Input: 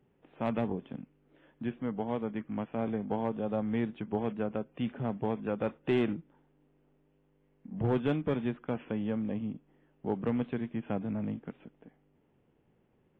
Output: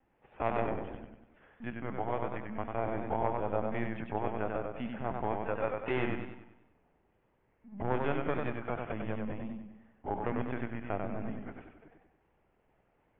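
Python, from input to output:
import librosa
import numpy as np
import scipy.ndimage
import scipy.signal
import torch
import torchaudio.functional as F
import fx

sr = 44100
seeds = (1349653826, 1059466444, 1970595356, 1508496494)

y = fx.wow_flutter(x, sr, seeds[0], rate_hz=2.1, depth_cents=24.0)
y = fx.band_shelf(y, sr, hz=1200.0, db=9.5, octaves=2.4)
y = fx.lpc_vocoder(y, sr, seeds[1], excitation='pitch_kept', order=16)
y = fx.echo_warbled(y, sr, ms=96, feedback_pct=47, rate_hz=2.8, cents=77, wet_db=-4.0)
y = y * 10.0 ** (-6.0 / 20.0)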